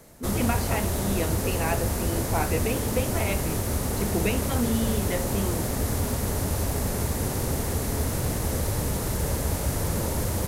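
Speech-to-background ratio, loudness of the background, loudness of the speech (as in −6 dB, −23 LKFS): −3.5 dB, −27.5 LKFS, −31.0 LKFS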